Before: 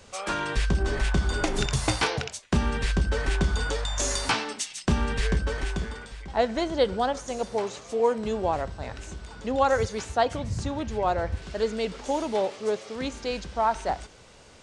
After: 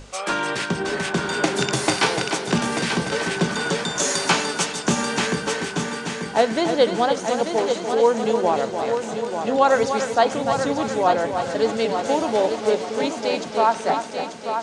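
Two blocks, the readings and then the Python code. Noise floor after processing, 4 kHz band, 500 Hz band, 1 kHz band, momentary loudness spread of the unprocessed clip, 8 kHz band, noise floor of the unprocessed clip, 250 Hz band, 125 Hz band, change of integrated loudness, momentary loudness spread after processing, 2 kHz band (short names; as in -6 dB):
-32 dBFS, +7.0 dB, +7.0 dB, +7.0 dB, 7 LU, +7.0 dB, -51 dBFS, +6.5 dB, -2.0 dB, +6.0 dB, 6 LU, +7.0 dB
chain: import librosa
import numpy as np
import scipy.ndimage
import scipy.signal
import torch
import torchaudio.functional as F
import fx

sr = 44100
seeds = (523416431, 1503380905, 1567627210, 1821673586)

p1 = scipy.signal.sosfilt(scipy.signal.butter(4, 150.0, 'highpass', fs=sr, output='sos'), x)
p2 = fx.add_hum(p1, sr, base_hz=50, snr_db=14)
p3 = fx.hum_notches(p2, sr, base_hz=50, count=5)
p4 = p3 + fx.echo_heads(p3, sr, ms=296, heads='first and third', feedback_pct=56, wet_db=-8.0, dry=0)
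y = p4 * librosa.db_to_amplitude(5.5)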